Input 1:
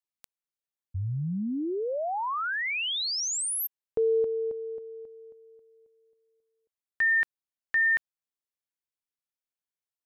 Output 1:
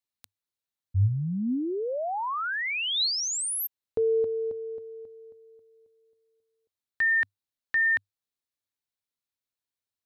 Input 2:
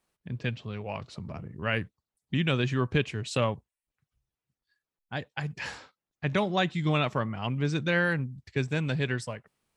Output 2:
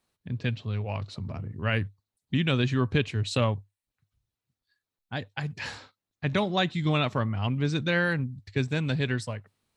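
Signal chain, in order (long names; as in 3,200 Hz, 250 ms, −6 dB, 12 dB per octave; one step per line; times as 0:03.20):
thirty-one-band graphic EQ 100 Hz +11 dB, 250 Hz +4 dB, 4,000 Hz +6 dB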